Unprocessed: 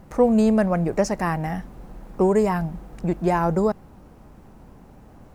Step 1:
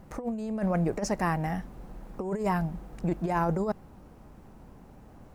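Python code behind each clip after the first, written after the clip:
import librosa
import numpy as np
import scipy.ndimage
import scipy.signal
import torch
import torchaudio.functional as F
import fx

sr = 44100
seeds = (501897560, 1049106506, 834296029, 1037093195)

y = fx.over_compress(x, sr, threshold_db=-21.0, ratio=-0.5)
y = y * 10.0 ** (-6.0 / 20.0)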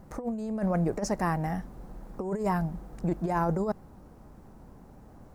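y = fx.peak_eq(x, sr, hz=2700.0, db=-6.0, octaves=0.95)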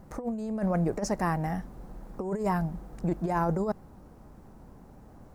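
y = x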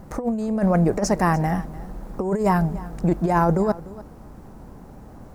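y = x + 10.0 ** (-18.5 / 20.0) * np.pad(x, (int(296 * sr / 1000.0), 0))[:len(x)]
y = y * 10.0 ** (8.5 / 20.0)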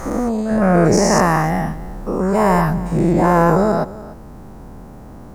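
y = fx.spec_dilate(x, sr, span_ms=240)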